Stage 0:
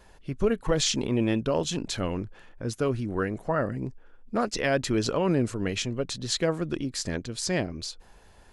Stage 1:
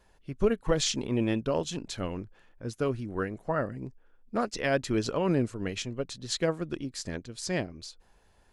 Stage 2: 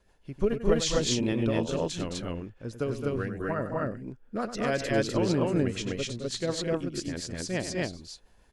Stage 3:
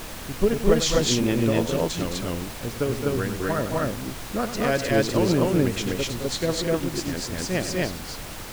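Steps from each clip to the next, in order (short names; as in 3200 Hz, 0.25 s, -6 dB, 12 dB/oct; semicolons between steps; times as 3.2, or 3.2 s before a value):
upward expander 1.5:1, over -37 dBFS
rotary speaker horn 6.7 Hz; loudspeakers at several distances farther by 33 m -11 dB, 74 m -7 dB, 86 m 0 dB
added noise pink -41 dBFS; gain +5 dB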